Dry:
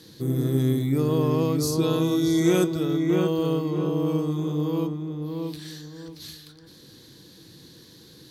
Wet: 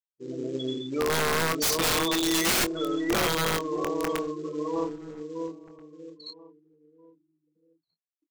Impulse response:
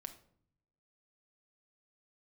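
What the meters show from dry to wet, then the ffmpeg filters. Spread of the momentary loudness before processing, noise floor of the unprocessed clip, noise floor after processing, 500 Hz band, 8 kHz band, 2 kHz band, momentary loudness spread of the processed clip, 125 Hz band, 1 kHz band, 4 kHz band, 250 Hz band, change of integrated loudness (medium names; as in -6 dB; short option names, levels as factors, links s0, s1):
17 LU, -50 dBFS, under -85 dBFS, -3.5 dB, +7.0 dB, +10.0 dB, 19 LU, -14.0 dB, +5.0 dB, +6.5 dB, -7.5 dB, -2.5 dB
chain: -filter_complex "[0:a]afftfilt=real='re*gte(hypot(re,im),0.0398)':imag='im*gte(hypot(re,im),0.0398)':win_size=1024:overlap=0.75,highpass=690,highshelf=f=2200:g=3,dynaudnorm=f=190:g=3:m=2.37,aresample=16000,acrusher=bits=6:mode=log:mix=0:aa=0.000001,aresample=44100,aeval=exprs='(mod(8.91*val(0)+1,2)-1)/8.91':c=same,asplit=2[s0][s1];[s1]adelay=24,volume=0.355[s2];[s0][s2]amix=inputs=2:normalize=0,asplit=2[s3][s4];[s4]adelay=1633,volume=0.0891,highshelf=f=4000:g=-36.7[s5];[s3][s5]amix=inputs=2:normalize=0"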